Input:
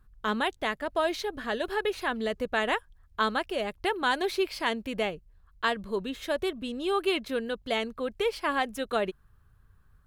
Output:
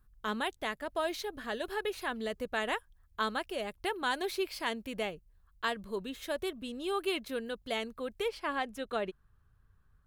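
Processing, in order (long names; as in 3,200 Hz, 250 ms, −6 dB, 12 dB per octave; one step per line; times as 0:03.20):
high-shelf EQ 8,100 Hz +9 dB, from 0:08.28 −5 dB
level −6 dB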